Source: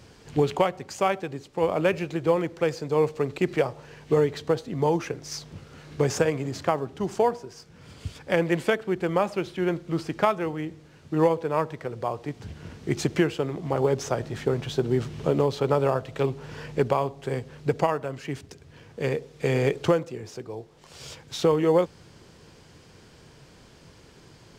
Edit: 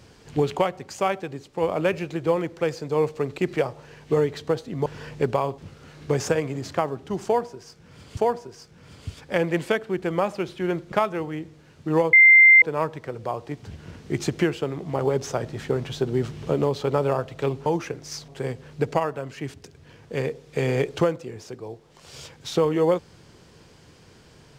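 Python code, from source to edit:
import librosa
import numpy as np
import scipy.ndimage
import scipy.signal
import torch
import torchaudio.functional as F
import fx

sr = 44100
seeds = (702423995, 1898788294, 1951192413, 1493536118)

y = fx.edit(x, sr, fx.swap(start_s=4.86, length_s=0.62, other_s=16.43, other_length_s=0.72),
    fx.repeat(start_s=7.15, length_s=0.92, count=2),
    fx.cut(start_s=9.9, length_s=0.28),
    fx.insert_tone(at_s=11.39, length_s=0.49, hz=2090.0, db=-8.5), tone=tone)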